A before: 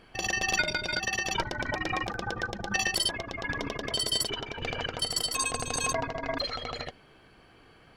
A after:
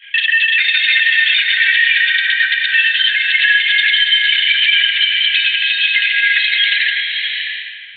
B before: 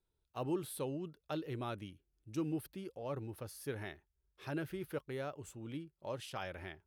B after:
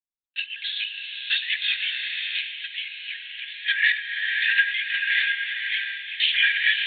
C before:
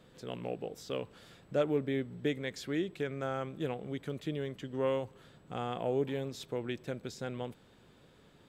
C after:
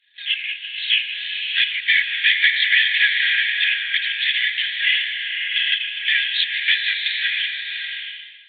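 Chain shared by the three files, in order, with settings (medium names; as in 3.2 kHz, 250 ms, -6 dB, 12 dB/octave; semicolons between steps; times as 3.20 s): chunks repeated in reverse 103 ms, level -13 dB; Chebyshev high-pass 1.6 kHz, order 10; expander -57 dBFS; compression 3:1, threshold -40 dBFS; LPC vocoder at 8 kHz whisper; loudness maximiser +35 dB; swelling reverb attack 640 ms, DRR 2.5 dB; trim -4 dB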